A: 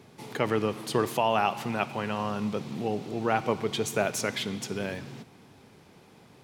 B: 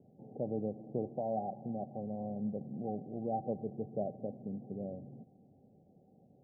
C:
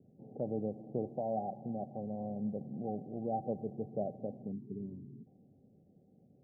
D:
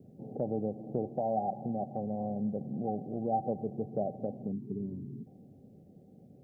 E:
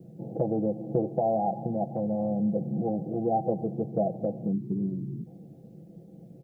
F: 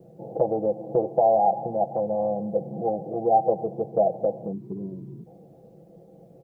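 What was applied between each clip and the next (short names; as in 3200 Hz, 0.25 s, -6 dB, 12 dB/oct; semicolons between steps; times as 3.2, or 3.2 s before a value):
rippled Chebyshev low-pass 790 Hz, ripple 6 dB; gain -5.5 dB
spectral gain 4.52–5.27, 440–910 Hz -27 dB; low-pass opened by the level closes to 400 Hz, open at -34 dBFS
compressor 1.5:1, threshold -47 dBFS, peak gain reduction 6.5 dB; dynamic EQ 800 Hz, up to +4 dB, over -56 dBFS, Q 4.9; gain +8.5 dB
comb 6 ms, depth 99%; gain +4 dB
graphic EQ 125/250/500/1000 Hz -4/-7/+6/+10 dB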